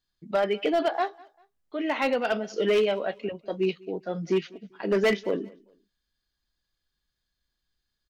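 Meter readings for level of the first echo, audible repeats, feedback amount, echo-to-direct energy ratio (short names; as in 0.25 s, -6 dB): -24.0 dB, 2, 31%, -23.5 dB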